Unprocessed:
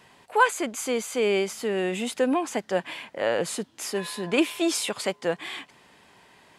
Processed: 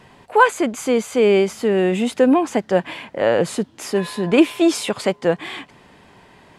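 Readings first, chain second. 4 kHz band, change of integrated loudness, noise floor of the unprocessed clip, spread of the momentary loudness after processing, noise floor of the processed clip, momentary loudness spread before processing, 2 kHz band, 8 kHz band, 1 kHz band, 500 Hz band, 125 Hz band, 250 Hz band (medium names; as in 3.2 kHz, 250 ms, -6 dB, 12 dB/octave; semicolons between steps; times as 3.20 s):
+3.0 dB, +8.0 dB, -59 dBFS, 8 LU, -51 dBFS, 9 LU, +5.0 dB, +0.5 dB, +6.5 dB, +8.5 dB, +11.5 dB, +10.0 dB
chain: tilt EQ -2 dB/octave; trim +6.5 dB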